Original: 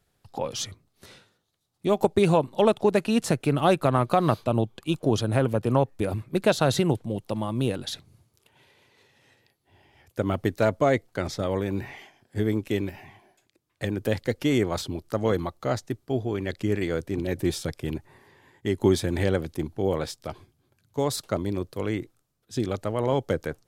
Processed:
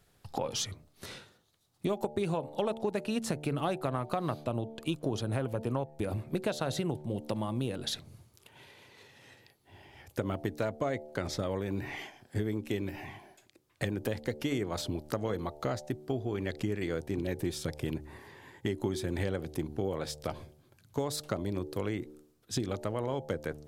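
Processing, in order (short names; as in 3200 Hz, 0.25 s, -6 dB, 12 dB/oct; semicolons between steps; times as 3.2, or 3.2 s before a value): de-hum 74.78 Hz, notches 12; compressor 5:1, threshold -35 dBFS, peak gain reduction 17.5 dB; gain +4.5 dB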